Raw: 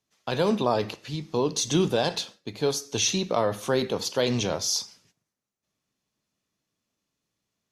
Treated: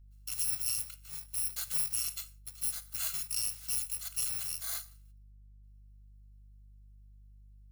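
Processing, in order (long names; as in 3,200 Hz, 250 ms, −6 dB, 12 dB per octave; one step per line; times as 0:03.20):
samples in bit-reversed order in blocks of 128 samples
mains hum 50 Hz, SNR 10 dB
guitar amp tone stack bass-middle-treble 10-0-10
level −9 dB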